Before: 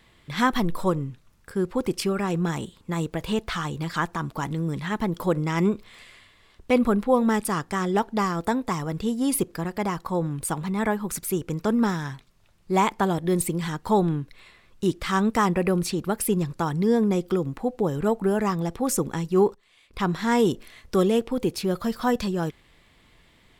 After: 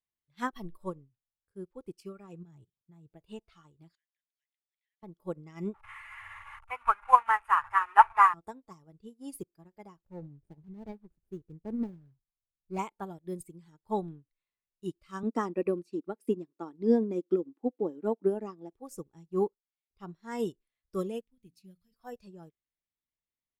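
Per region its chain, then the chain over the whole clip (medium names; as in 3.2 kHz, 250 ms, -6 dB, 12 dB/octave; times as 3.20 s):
2.43–3.12 s: peaking EQ 130 Hz +12.5 dB 0.8 oct + level held to a coarse grid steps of 14 dB
3.95–5.03 s: steep high-pass 1.8 kHz 72 dB/octave + compression 3:1, threshold -46 dBFS + distance through air 110 m
5.74–8.34 s: one-bit delta coder 64 kbps, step -23.5 dBFS + FFT filter 110 Hz 0 dB, 180 Hz -28 dB, 560 Hz -11 dB, 910 Hz +13 dB, 1.4 kHz +12 dB, 2 kHz +8 dB, 4.8 kHz -14 dB, 8 kHz -10 dB
10.02–12.79 s: median filter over 41 samples + bass shelf 110 Hz +9 dB
15.23–18.73 s: resonant high-pass 280 Hz, resonance Q 3 + treble shelf 7.6 kHz -8 dB
21.20–21.94 s: high-order bell 700 Hz -14 dB 2.4 oct + de-hum 57.96 Hz, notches 5
whole clip: spectral noise reduction 9 dB; upward expansion 2.5:1, over -34 dBFS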